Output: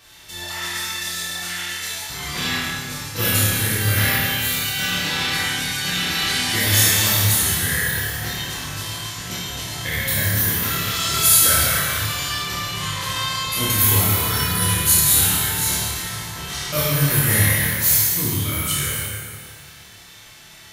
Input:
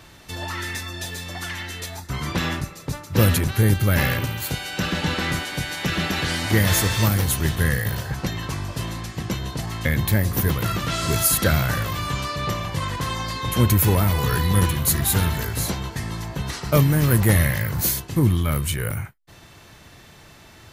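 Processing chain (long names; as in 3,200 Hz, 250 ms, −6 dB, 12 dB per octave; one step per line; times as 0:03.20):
tilt shelving filter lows −7 dB, about 1,300 Hz
on a send: flutter between parallel walls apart 4.8 metres, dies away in 0.35 s
on the sum: dense smooth reverb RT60 2 s, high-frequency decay 0.9×, DRR −7 dB
level −7.5 dB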